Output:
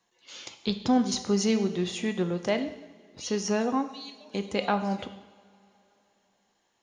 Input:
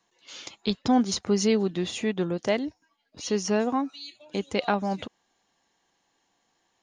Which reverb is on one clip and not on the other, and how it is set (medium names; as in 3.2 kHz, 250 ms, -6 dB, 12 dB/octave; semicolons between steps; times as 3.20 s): two-slope reverb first 0.87 s, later 3.4 s, from -19 dB, DRR 7.5 dB; trim -2 dB